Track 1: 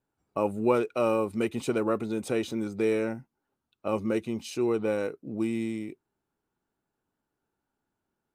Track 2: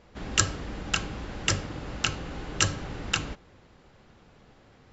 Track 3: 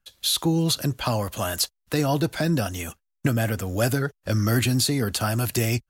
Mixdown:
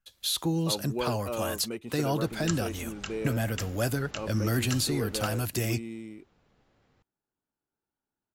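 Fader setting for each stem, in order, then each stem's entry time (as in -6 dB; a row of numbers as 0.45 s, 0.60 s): -8.5 dB, -11.5 dB, -6.0 dB; 0.30 s, 2.10 s, 0.00 s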